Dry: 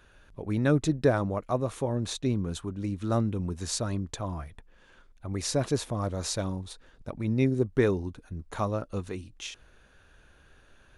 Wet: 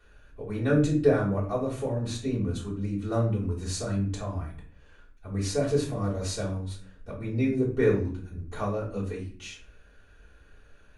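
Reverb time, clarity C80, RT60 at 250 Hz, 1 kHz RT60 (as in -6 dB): 0.45 s, 12.0 dB, 0.70 s, 0.45 s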